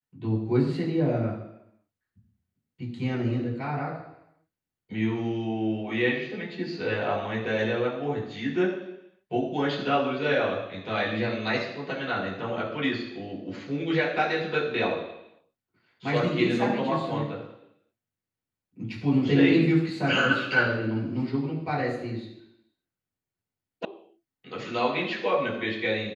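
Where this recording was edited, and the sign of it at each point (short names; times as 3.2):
23.85 sound cut off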